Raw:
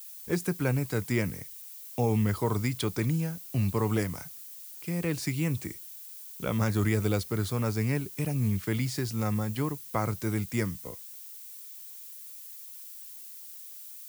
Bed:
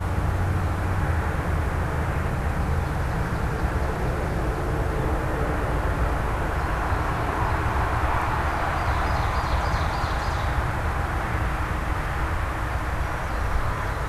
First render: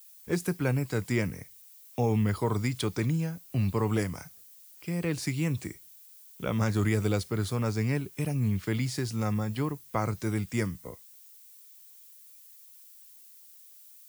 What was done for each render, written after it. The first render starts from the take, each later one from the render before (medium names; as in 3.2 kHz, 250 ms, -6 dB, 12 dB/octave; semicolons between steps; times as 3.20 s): noise print and reduce 8 dB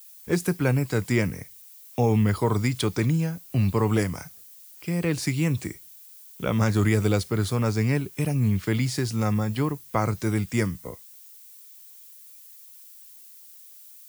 trim +5 dB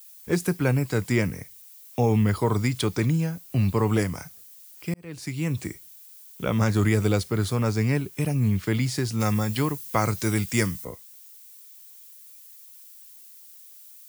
4.94–5.68 s: fade in; 9.20–10.85 s: treble shelf 2.2 kHz +8.5 dB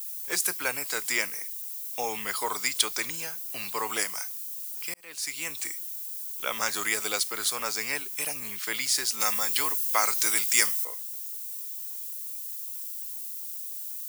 high-pass 830 Hz 12 dB/octave; treble shelf 3.5 kHz +11.5 dB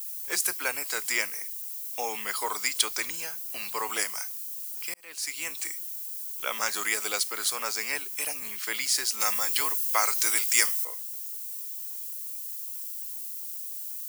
high-pass 330 Hz 6 dB/octave; band-stop 3.6 kHz, Q 18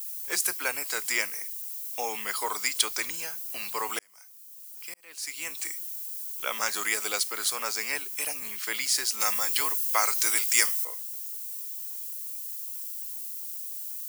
3.99–5.71 s: fade in